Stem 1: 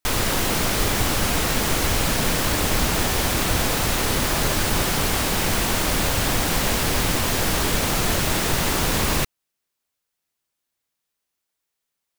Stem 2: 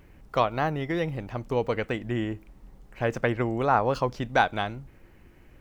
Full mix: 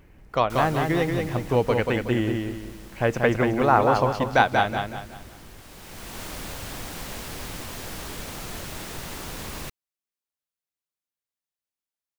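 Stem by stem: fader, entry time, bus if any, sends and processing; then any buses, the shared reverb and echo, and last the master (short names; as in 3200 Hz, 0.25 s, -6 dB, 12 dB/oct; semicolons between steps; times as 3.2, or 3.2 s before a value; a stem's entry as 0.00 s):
-18.0 dB, 0.45 s, no send, no echo send, auto duck -13 dB, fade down 1.90 s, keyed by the second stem
0.0 dB, 0.00 s, no send, echo send -4.5 dB, dry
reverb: off
echo: feedback echo 0.185 s, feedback 36%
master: AGC gain up to 4 dB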